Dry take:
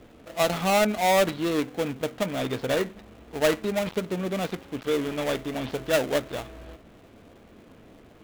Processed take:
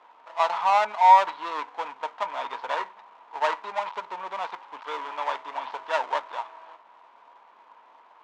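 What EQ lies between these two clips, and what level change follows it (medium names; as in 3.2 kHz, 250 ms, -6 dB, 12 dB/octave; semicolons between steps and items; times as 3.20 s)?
resonant high-pass 950 Hz, resonance Q 11; distance through air 140 m; -3.0 dB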